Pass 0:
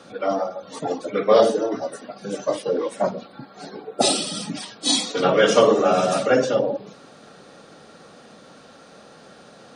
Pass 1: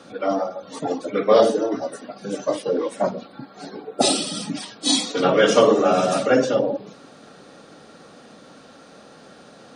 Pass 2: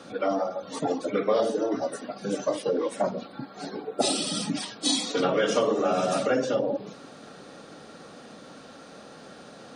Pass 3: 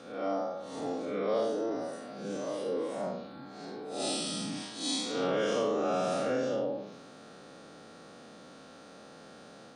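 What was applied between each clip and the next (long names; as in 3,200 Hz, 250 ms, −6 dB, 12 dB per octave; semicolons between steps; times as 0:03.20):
parametric band 280 Hz +4 dB 0.43 octaves
downward compressor 3 to 1, threshold −23 dBFS, peak gain reduction 10.5 dB
spectrum smeared in time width 154 ms; level −3.5 dB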